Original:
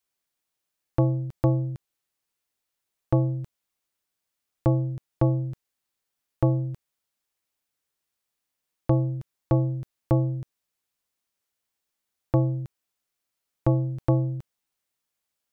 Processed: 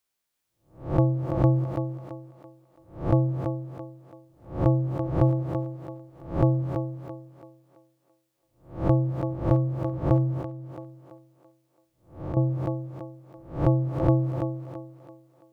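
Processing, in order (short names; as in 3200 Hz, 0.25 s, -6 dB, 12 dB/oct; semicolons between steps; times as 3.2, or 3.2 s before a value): spectral swells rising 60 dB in 0.41 s; thinning echo 0.334 s, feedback 39%, high-pass 170 Hz, level -5.5 dB; 10.41–12.37 compressor 2.5:1, threshold -34 dBFS, peak gain reduction 12.5 dB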